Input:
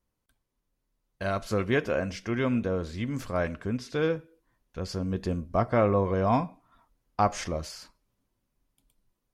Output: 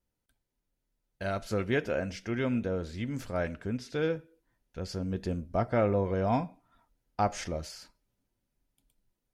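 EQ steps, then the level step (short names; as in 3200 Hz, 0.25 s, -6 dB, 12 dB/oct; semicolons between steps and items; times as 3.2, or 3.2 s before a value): notch 1100 Hz, Q 5.4; -3.0 dB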